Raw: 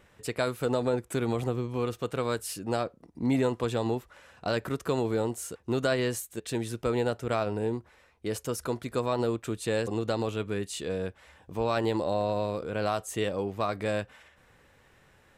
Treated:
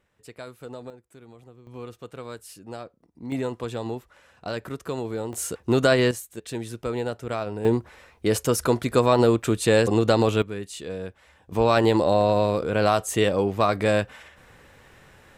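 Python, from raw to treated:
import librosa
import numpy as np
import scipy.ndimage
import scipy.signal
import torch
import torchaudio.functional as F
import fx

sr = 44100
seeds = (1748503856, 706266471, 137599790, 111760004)

y = fx.gain(x, sr, db=fx.steps((0.0, -11.0), (0.9, -19.5), (1.67, -8.0), (3.32, -2.0), (5.33, 8.0), (6.11, -0.5), (7.65, 10.0), (10.42, -1.0), (11.52, 8.5)))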